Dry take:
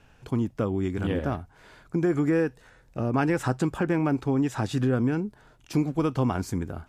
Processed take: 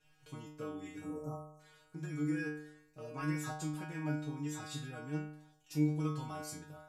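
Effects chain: spectral selection erased 1.01–1.60 s, 1.4–5.3 kHz; treble shelf 2.9 kHz +10.5 dB; inharmonic resonator 150 Hz, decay 0.74 s, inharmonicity 0.002; trim +1 dB

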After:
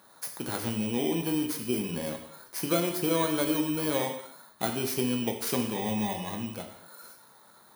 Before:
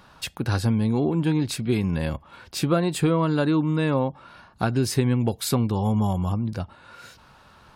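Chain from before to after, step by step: bit-reversed sample order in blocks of 16 samples; high-pass 260 Hz 12 dB/octave; gated-style reverb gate 280 ms falling, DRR 2.5 dB; trim -5 dB

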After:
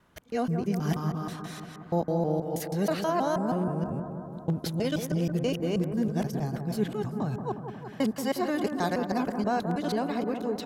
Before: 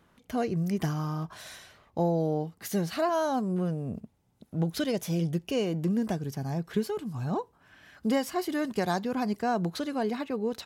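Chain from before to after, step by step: time reversed locally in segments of 160 ms; bucket-brigade echo 180 ms, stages 2048, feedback 71%, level -8 dB

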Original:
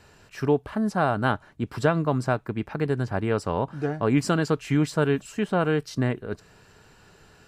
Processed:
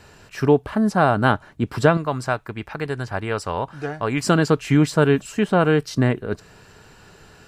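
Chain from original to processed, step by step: 1.97–4.27 s: peaking EQ 220 Hz -10 dB 2.9 oct; trim +6 dB

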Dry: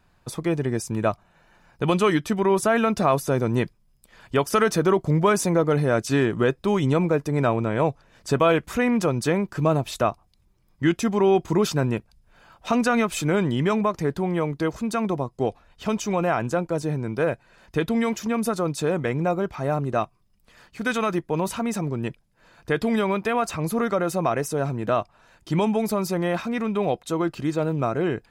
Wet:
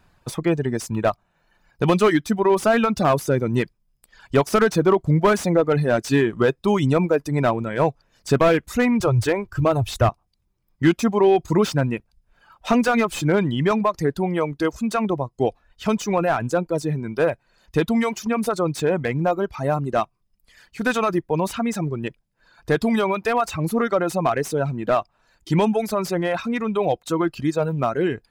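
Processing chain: 9.00–10.09 s: resonant low shelf 130 Hz +9.5 dB, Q 3; reverb removal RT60 1.7 s; slew-rate limiter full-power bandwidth 130 Hz; trim +4 dB

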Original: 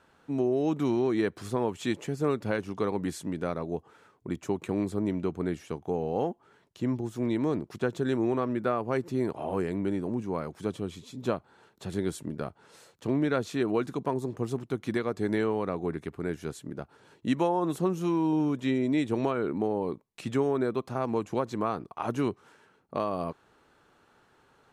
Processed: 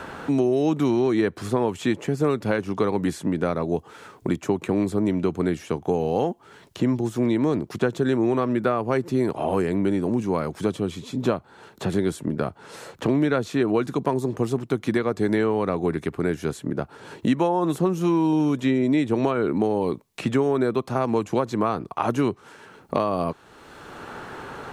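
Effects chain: three bands compressed up and down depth 70%; trim +6 dB

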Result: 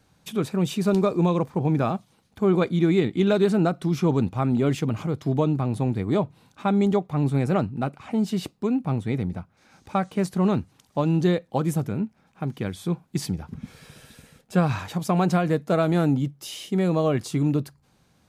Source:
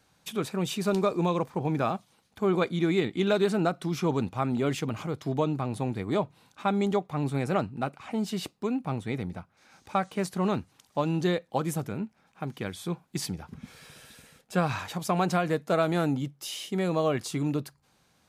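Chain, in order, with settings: bass shelf 400 Hz +8.5 dB

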